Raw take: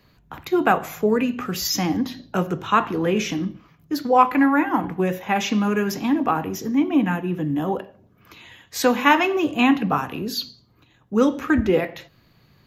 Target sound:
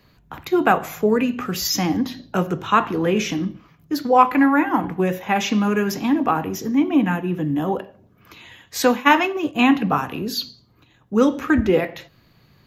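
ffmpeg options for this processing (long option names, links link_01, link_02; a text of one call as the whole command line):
ffmpeg -i in.wav -filter_complex "[0:a]asplit=3[link_01][link_02][link_03];[link_01]afade=type=out:start_time=8.9:duration=0.02[link_04];[link_02]agate=range=-33dB:threshold=-16dB:ratio=3:detection=peak,afade=type=in:start_time=8.9:duration=0.02,afade=type=out:start_time=9.54:duration=0.02[link_05];[link_03]afade=type=in:start_time=9.54:duration=0.02[link_06];[link_04][link_05][link_06]amix=inputs=3:normalize=0,volume=1.5dB" out.wav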